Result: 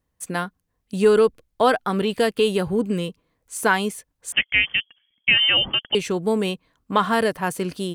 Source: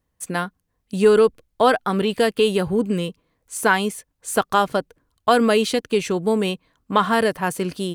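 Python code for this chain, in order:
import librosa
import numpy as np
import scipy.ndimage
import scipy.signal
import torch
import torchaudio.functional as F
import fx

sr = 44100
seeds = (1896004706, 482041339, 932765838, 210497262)

y = fx.freq_invert(x, sr, carrier_hz=3300, at=(4.32, 5.95))
y = y * librosa.db_to_amplitude(-1.5)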